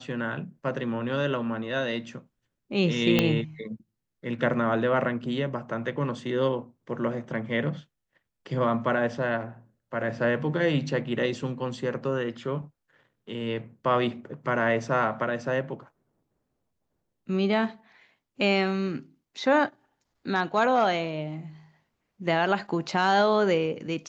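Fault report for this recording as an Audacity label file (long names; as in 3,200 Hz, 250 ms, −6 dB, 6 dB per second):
3.190000	3.190000	click −7 dBFS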